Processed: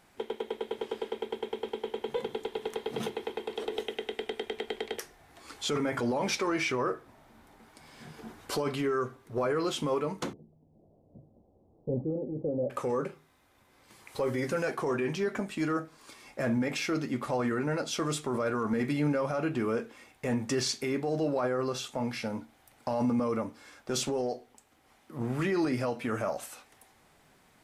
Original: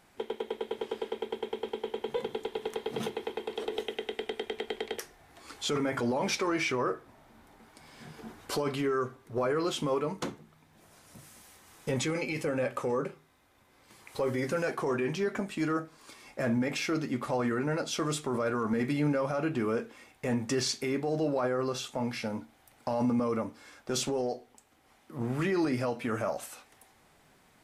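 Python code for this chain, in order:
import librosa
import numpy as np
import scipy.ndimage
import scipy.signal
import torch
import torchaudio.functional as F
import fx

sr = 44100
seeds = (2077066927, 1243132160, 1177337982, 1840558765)

y = fx.steep_lowpass(x, sr, hz=660.0, slope=36, at=(10.33, 12.7))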